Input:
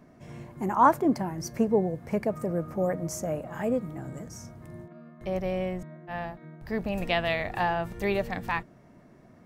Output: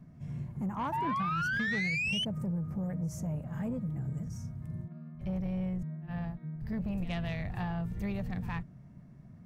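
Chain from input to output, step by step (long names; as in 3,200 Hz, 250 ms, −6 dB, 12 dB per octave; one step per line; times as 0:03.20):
low shelf with overshoot 240 Hz +13.5 dB, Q 1.5
downward compressor 4 to 1, threshold −20 dBFS, peak gain reduction 7 dB
echo ahead of the sound 64 ms −18 dB
sound drawn into the spectrogram rise, 0:00.92–0:02.25, 870–3,100 Hz −21 dBFS
soft clipping −18 dBFS, distortion −15 dB
level −9 dB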